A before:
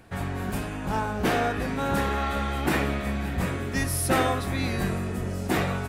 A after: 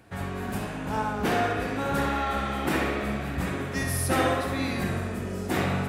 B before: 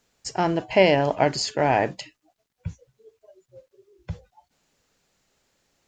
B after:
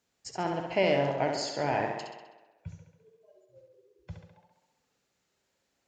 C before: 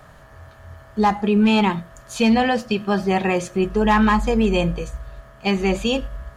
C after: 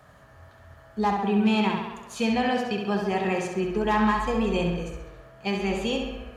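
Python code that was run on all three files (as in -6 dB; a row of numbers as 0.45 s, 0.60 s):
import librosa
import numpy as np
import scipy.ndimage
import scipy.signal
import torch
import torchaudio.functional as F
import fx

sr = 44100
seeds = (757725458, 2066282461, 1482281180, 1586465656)

p1 = scipy.signal.sosfilt(scipy.signal.butter(2, 52.0, 'highpass', fs=sr, output='sos'), x)
p2 = p1 + fx.echo_tape(p1, sr, ms=67, feedback_pct=71, wet_db=-3.5, lp_hz=5600.0, drive_db=8.0, wow_cents=25, dry=0)
y = librosa.util.normalize(p2) * 10.0 ** (-12 / 20.0)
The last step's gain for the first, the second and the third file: -2.5 dB, -9.5 dB, -7.5 dB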